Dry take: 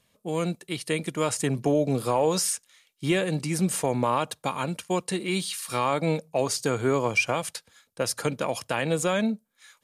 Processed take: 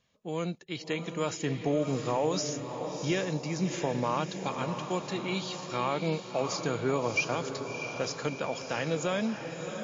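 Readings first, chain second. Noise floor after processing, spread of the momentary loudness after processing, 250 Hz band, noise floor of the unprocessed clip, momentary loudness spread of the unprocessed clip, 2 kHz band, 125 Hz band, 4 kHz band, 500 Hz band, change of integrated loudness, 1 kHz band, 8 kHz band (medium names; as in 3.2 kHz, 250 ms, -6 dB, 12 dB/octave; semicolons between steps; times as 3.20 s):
-45 dBFS, 6 LU, -4.5 dB, -71 dBFS, 7 LU, -4.5 dB, -4.5 dB, -4.0 dB, -4.5 dB, -5.0 dB, -4.5 dB, -9.0 dB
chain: echo that smears into a reverb 663 ms, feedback 52%, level -7.5 dB; trim -5 dB; MP3 32 kbps 16 kHz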